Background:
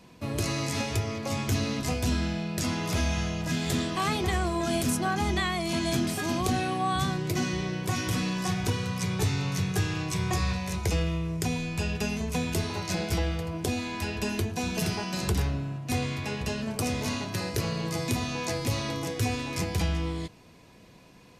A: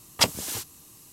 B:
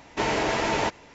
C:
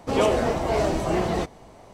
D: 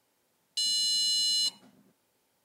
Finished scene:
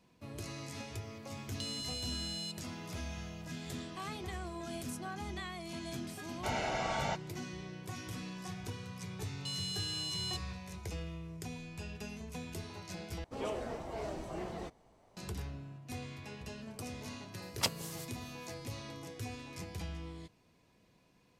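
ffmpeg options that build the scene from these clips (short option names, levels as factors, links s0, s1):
-filter_complex "[4:a]asplit=2[s0][s1];[0:a]volume=0.188[s2];[s0]acompressor=threshold=0.01:ratio=6:attack=3.2:release=140:knee=1:detection=peak[s3];[2:a]aecho=1:1:1.4:0.94[s4];[s1]equalizer=f=2600:w=1.5:g=3.5[s5];[1:a]tremolo=f=4.7:d=0.63[s6];[s2]asplit=2[s7][s8];[s7]atrim=end=13.244[s9];[3:a]atrim=end=1.93,asetpts=PTS-STARTPTS,volume=0.133[s10];[s8]atrim=start=15.166[s11];[s3]atrim=end=2.44,asetpts=PTS-STARTPTS,volume=0.944,afade=t=in:d=0.004:c=hsin,afade=t=out:st=2.436:d=0.004:c=hsin,adelay=1030[s12];[s4]atrim=end=1.14,asetpts=PTS-STARTPTS,volume=0.211,afade=t=in:d=0.004:c=hsin,afade=t=out:st=1.136:d=0.004:c=hsin,adelay=276066S[s13];[s5]atrim=end=2.44,asetpts=PTS-STARTPTS,volume=0.211,afade=t=in:d=0.004:c=hsin,afade=t=out:st=2.436:d=0.004:c=hsin,adelay=8880[s14];[s6]atrim=end=1.12,asetpts=PTS-STARTPTS,volume=0.282,afade=t=in:d=0.004:c=hsin,afade=t=out:st=1.116:d=0.004:c=hsin,adelay=17420[s15];[s9][s10]acrossfade=d=0.004:c1=hsin:c2=hsin[s16];[s16][s11]acrossfade=d=0.004:c1=hsin:c2=hsin[s17];[s17][s12][s13][s14][s15]amix=inputs=5:normalize=0"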